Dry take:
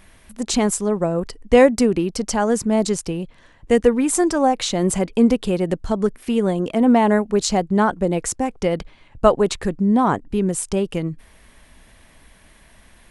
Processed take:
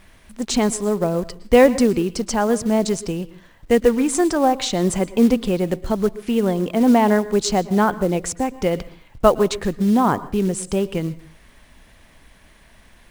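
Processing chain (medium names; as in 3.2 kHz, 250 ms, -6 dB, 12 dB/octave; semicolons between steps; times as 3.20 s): low-pass 8.5 kHz; companded quantiser 6-bit; on a send: reverberation RT60 0.40 s, pre-delay 108 ms, DRR 17 dB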